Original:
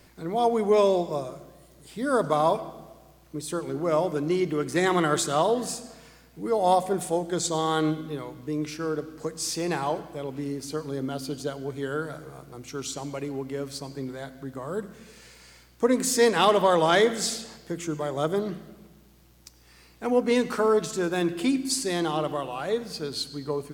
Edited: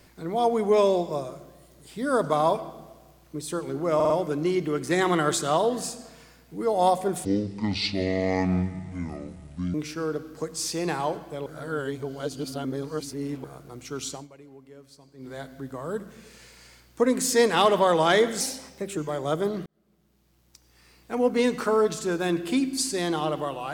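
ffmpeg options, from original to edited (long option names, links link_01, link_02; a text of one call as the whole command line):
ffmpeg -i in.wav -filter_complex "[0:a]asplit=13[link_01][link_02][link_03][link_04][link_05][link_06][link_07][link_08][link_09][link_10][link_11][link_12][link_13];[link_01]atrim=end=4.002[link_14];[link_02]atrim=start=3.948:end=4.002[link_15];[link_03]atrim=start=3.948:end=4.002[link_16];[link_04]atrim=start=3.948:end=7.104[link_17];[link_05]atrim=start=7.1:end=8.57,asetpts=PTS-STARTPTS,asetrate=26019,aresample=44100,atrim=end_sample=109876,asetpts=PTS-STARTPTS[link_18];[link_06]atrim=start=8.566:end=10.292[link_19];[link_07]atrim=start=10.288:end=12.272,asetpts=PTS-STARTPTS,areverse[link_20];[link_08]atrim=start=12.268:end=13.11,asetpts=PTS-STARTPTS,afade=type=out:start_time=0.662:duration=0.18:silence=0.158489[link_21];[link_09]atrim=start=13.11:end=14,asetpts=PTS-STARTPTS,volume=-16dB[link_22];[link_10]atrim=start=14:end=17.234,asetpts=PTS-STARTPTS,afade=type=in:duration=0.18:silence=0.158489[link_23];[link_11]atrim=start=17.23:end=17.89,asetpts=PTS-STARTPTS,asetrate=51156,aresample=44100,atrim=end_sample=25091,asetpts=PTS-STARTPTS[link_24];[link_12]atrim=start=17.886:end=18.58,asetpts=PTS-STARTPTS,afade=type=out:start_time=0.69:duration=0.004:curve=hsin[link_25];[link_13]atrim=start=18.58,asetpts=PTS-STARTPTS,afade=type=in:duration=1.63[link_26];[link_14][link_15]acrossfade=duration=0.004:curve1=hsin:curve2=hsin[link_27];[link_27][link_16]acrossfade=duration=0.004:curve1=hsin:curve2=hsin[link_28];[link_28][link_17]acrossfade=duration=0.004:curve1=hsin:curve2=hsin[link_29];[link_29][link_18]acrossfade=duration=0.004:curve1=hsin:curve2=hsin[link_30];[link_30][link_19]acrossfade=duration=0.004:curve1=hsin:curve2=hsin[link_31];[link_31][link_20]acrossfade=duration=0.004:curve1=hsin:curve2=hsin[link_32];[link_21][link_22][link_23]concat=n=3:v=0:a=1[link_33];[link_32][link_33]acrossfade=duration=0.004:curve1=hsin:curve2=hsin[link_34];[link_34][link_24]acrossfade=duration=0.004:curve1=hsin:curve2=hsin[link_35];[link_25][link_26]concat=n=2:v=0:a=1[link_36];[link_35][link_36]acrossfade=duration=0.004:curve1=hsin:curve2=hsin" out.wav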